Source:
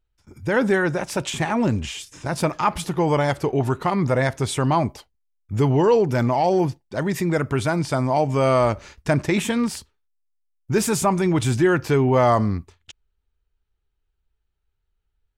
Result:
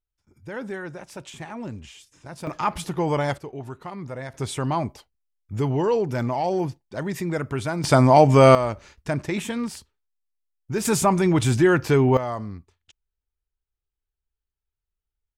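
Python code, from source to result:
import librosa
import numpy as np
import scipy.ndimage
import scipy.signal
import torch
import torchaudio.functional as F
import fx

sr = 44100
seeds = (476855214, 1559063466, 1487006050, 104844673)

y = fx.gain(x, sr, db=fx.steps((0.0, -13.5), (2.47, -3.5), (3.38, -14.0), (4.34, -5.0), (7.84, 6.5), (8.55, -6.0), (10.85, 0.5), (12.17, -12.0)))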